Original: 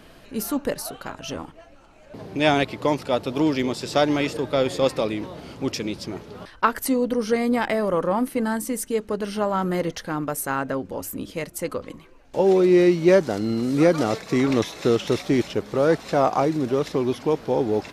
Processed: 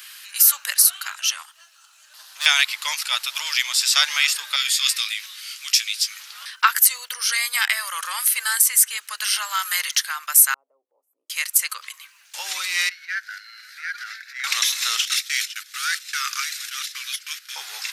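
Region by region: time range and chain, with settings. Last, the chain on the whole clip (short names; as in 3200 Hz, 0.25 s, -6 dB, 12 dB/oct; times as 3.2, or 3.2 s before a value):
1.43–2.46 bell 2200 Hz -14 dB 0.37 oct + tube stage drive 25 dB, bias 0.55
4.56–6.2 Bessel high-pass 1900 Hz, order 4 + doubler 18 ms -7.5 dB
7.32–9.97 HPF 520 Hz 6 dB/oct + three-band squash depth 70%
10.54–11.3 inverse Chebyshev low-pass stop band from 1500 Hz, stop band 60 dB + upward compressor, threshold -40 dBFS
12.89–14.44 EQ curve 110 Hz 0 dB, 180 Hz -29 dB, 310 Hz -17 dB, 700 Hz -22 dB, 1100 Hz -28 dB, 1500 Hz +3 dB, 3000 Hz -17 dB, 4600 Hz -14 dB, 7900 Hz -27 dB, 14000 Hz -20 dB + transient shaper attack -12 dB, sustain -3 dB
15.05–17.56 gate -31 dBFS, range -12 dB + steep high-pass 1300 Hz 48 dB/oct
whole clip: HPF 1300 Hz 24 dB/oct; tilt +4.5 dB/oct; maximiser +6.5 dB; gain -1 dB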